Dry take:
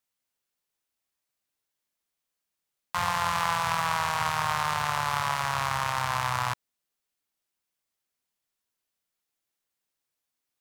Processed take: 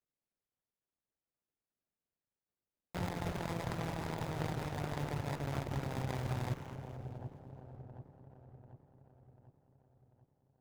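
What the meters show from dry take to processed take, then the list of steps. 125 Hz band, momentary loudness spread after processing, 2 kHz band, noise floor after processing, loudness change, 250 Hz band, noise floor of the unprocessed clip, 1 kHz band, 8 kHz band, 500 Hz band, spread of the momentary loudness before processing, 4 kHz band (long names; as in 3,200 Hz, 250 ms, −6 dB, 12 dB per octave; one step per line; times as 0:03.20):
0.0 dB, 18 LU, −17.0 dB, below −85 dBFS, −12.0 dB, +3.0 dB, −85 dBFS, −18.0 dB, −17.0 dB, −3.0 dB, 4 LU, −16.5 dB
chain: running median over 41 samples
reverb reduction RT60 0.58 s
in parallel at −11 dB: bit-depth reduction 6 bits, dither none
on the sum: echo with a time of its own for lows and highs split 850 Hz, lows 742 ms, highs 213 ms, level −8 dB
windowed peak hold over 9 samples
level −1 dB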